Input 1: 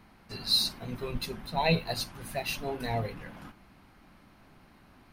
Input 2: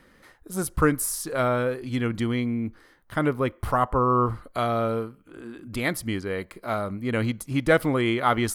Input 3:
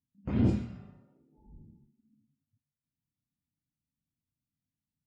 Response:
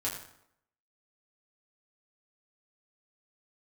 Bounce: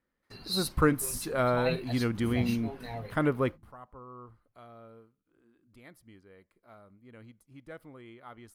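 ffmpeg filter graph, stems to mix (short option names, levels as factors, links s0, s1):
-filter_complex "[0:a]agate=range=0.0447:threshold=0.00316:ratio=16:detection=peak,volume=0.398,asplit=2[s0][s1];[1:a]equalizer=f=6300:w=0.39:g=-3.5,volume=0.708[s2];[2:a]asplit=2[s3][s4];[s4]afreqshift=2.8[s5];[s3][s5]amix=inputs=2:normalize=1,adelay=1950,volume=0.531[s6];[s1]apad=whole_len=376829[s7];[s2][s7]sidechaingate=range=0.0708:threshold=0.00112:ratio=16:detection=peak[s8];[s0][s8][s6]amix=inputs=3:normalize=0"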